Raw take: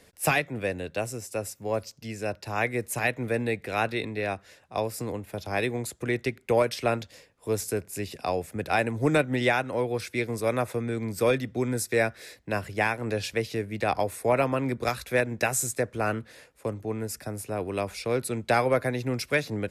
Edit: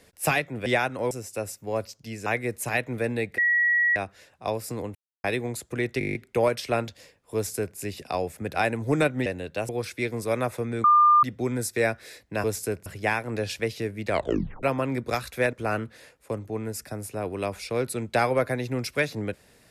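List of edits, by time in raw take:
0:00.66–0:01.09: swap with 0:09.40–0:09.85
0:02.24–0:02.56: remove
0:03.68–0:04.26: beep over 1,920 Hz −18.5 dBFS
0:05.25–0:05.54: silence
0:06.29: stutter 0.02 s, 9 plays
0:07.49–0:07.91: duplicate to 0:12.60
0:11.00–0:11.39: beep over 1,200 Hz −13.5 dBFS
0:13.83: tape stop 0.54 s
0:15.27–0:15.88: remove

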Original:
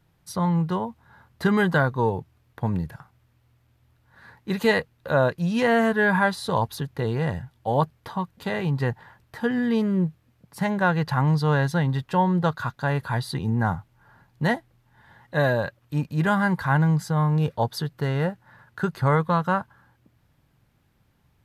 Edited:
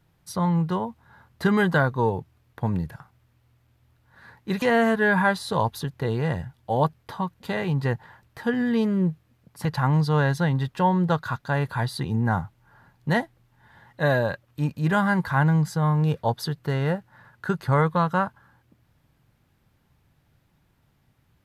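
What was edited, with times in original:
0:04.62–0:05.59: remove
0:10.62–0:10.99: remove

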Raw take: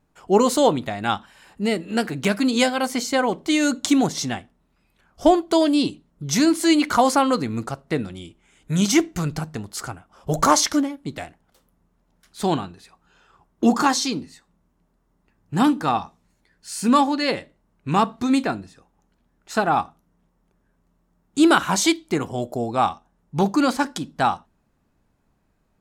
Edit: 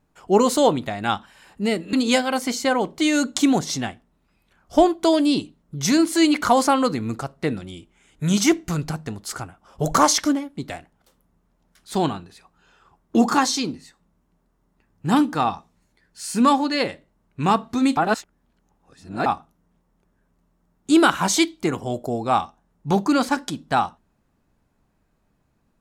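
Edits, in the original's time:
0:01.93–0:02.41: remove
0:18.45–0:19.74: reverse

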